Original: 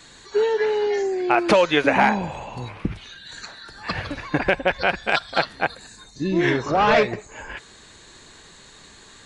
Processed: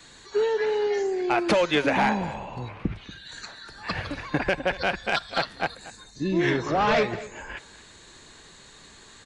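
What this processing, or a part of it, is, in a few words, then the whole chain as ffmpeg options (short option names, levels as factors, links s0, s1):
one-band saturation: -filter_complex "[0:a]acrossover=split=270|3100[s0][s1][s2];[s1]asoftclip=type=tanh:threshold=0.2[s3];[s0][s3][s2]amix=inputs=3:normalize=0,asettb=1/sr,asplit=3[s4][s5][s6];[s4]atrim=end=2.344[s7];[s5]atrim=start=2.34:end=3.11,asetpts=PTS-STARTPTS,afade=t=in:d=0.004:c=qsin,afade=t=out:st=0.766:d=0.004:c=qsin,aemphasis=mode=reproduction:type=50fm[s8];[s6]atrim=start=3.106[s9];[s7][s8]acrossfade=d=0.004:c1=hsin:c2=qsin[s10];[s10][s9]acrossfade=d=0.004:c1=qsin:c2=hsin,aecho=1:1:236:0.141,volume=0.75"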